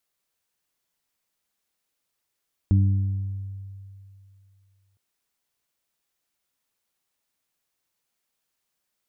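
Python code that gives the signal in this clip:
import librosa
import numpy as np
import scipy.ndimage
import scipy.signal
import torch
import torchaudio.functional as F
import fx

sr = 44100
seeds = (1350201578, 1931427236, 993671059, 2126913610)

y = fx.additive(sr, length_s=2.26, hz=97.7, level_db=-14, upper_db=(-8, -15), decay_s=2.61, upper_decays_s=(1.32, 1.18))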